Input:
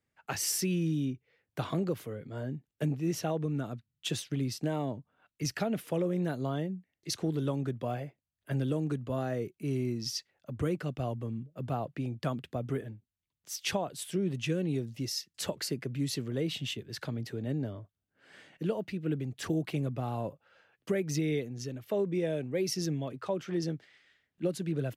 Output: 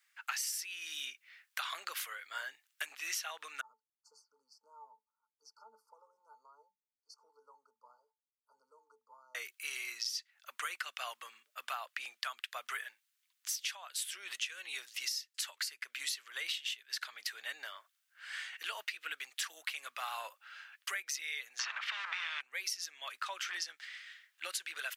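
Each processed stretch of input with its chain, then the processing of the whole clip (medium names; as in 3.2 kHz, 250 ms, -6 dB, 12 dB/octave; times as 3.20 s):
3.61–9.35 s: brick-wall FIR band-stop 1.5–4.3 kHz + pitch-class resonator A, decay 0.16 s
21.59–22.41 s: companding laws mixed up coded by mu + tape spacing loss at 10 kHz 41 dB + spectrum-flattening compressor 4:1
whole clip: high-pass 1.3 kHz 24 dB/octave; compression 16:1, threshold -49 dBFS; trim +14 dB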